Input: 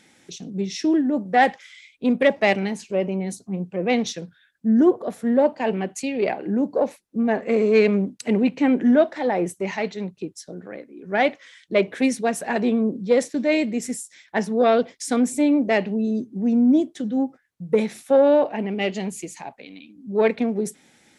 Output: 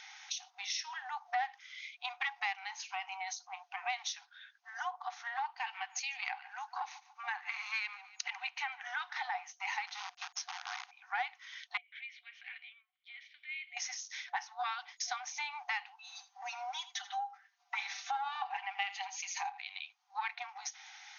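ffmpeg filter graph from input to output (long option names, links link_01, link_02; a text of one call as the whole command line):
ffmpeg -i in.wav -filter_complex "[0:a]asettb=1/sr,asplit=3[link_01][link_02][link_03];[link_01]atrim=end=5.504[link_04];[link_02]atrim=start=5.5:end=9.35,asetpts=PTS-STARTPTS,afade=type=in:duration=0.004:curve=qsin,afade=type=out:start_time=3.846:duration=0.004:curve=qsin,highpass=990,aecho=1:1:144|288:0.0794|0.0222,atrim=end_sample=169785[link_05];[link_03]atrim=start=9.346[link_06];[link_04][link_05]acrossfade=duration=0.004:curve1=hsin:curve2=qsin[link_07];[link_07][link_06]acrossfade=duration=0.004:curve1=qsin:curve2=hsin,asettb=1/sr,asplit=3[link_08][link_09][link_10];[link_08]atrim=end=9.874[link_11];[link_09]atrim=start=9.87:end=10.91,asetpts=PTS-STARTPTS,afade=type=in:duration=0.004:curve=qsin,afade=type=out:start_time=1.036:duration=0.004:curve=qsin,equalizer=frequency=880:width_type=o:width=1.2:gain=5,acompressor=threshold=-32dB:ratio=6:attack=3.2:release=140:knee=1:detection=peak,acrusher=bits=7:dc=4:mix=0:aa=0.000001[link_12];[link_10]atrim=start=10.906[link_13];[link_11][link_12]acrossfade=duration=0.004:curve1=hsin:curve2=qsin[link_14];[link_14][link_13]acrossfade=duration=0.004:curve1=qsin:curve2=hsin,asettb=1/sr,asplit=3[link_15][link_16][link_17];[link_15]atrim=end=11.774[link_18];[link_16]atrim=start=11.77:end=13.77,asetpts=PTS-STARTPTS,afade=type=in:duration=0.004:curve=qsin,afade=type=out:start_time=1.996:duration=0.004:curve=qsin,highshelf=frequency=5000:width_type=q:width=1.5:gain=-12.5,acompressor=threshold=-26dB:ratio=16:attack=3.2:release=140:knee=1:detection=peak,asplit=3[link_19][link_20][link_21];[link_19]bandpass=frequency=270:width_type=q:width=8,volume=0dB[link_22];[link_20]bandpass=frequency=2290:width_type=q:width=8,volume=-6dB[link_23];[link_21]bandpass=frequency=3010:width_type=q:width=8,volume=-9dB[link_24];[link_22][link_23][link_24]amix=inputs=3:normalize=0[link_25];[link_17]atrim=start=13.766[link_26];[link_18][link_25]acrossfade=duration=0.004:curve1=hsin:curve2=qsin[link_27];[link_27][link_26]acrossfade=duration=0.004:curve1=qsin:curve2=hsin,asettb=1/sr,asplit=3[link_28][link_29][link_30];[link_28]atrim=end=16.124[link_31];[link_29]atrim=start=16.12:end=19.59,asetpts=PTS-STARTPTS,afade=type=in:duration=0.004:curve=qsin,afade=type=out:start_time=3.466:duration=0.004:curve=qsin,aecho=1:1:5.1:0.91,atrim=end_sample=153027,aecho=1:1:82:0.141,atrim=end_sample=153027[link_32];[link_30]atrim=start=19.586[link_33];[link_31][link_32]acrossfade=duration=0.004:curve1=hsin:curve2=qsin[link_34];[link_34][link_33]acrossfade=duration=0.004:curve1=qsin:curve2=hsin,afftfilt=real='re*between(b*sr/4096,720,6700)':imag='im*between(b*sr/4096,720,6700)':win_size=4096:overlap=0.75,bandreject=frequency=1700:width=19,acompressor=threshold=-44dB:ratio=4,volume=6.5dB" out.wav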